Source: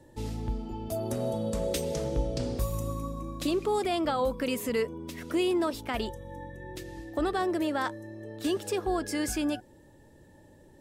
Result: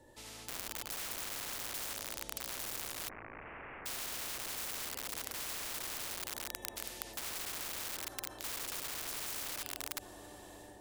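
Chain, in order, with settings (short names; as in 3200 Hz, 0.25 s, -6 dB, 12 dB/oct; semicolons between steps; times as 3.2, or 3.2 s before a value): AGC gain up to 15 dB; 0.49–0.9 low shelf 98 Hz +10.5 dB; analogue delay 0.368 s, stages 2048, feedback 69%, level -6.5 dB; on a send at -1.5 dB: reverb RT60 0.55 s, pre-delay 63 ms; 1.93–2.49 on the sum: level quantiser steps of 17 dB; wrapped overs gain 10 dB; bell 170 Hz -12.5 dB 0.98 oct; limiter -11.5 dBFS, peak gain reduction 6 dB; 3.09–3.86 steep low-pass 2100 Hz 72 dB/oct; spectral compressor 4:1; gain -3 dB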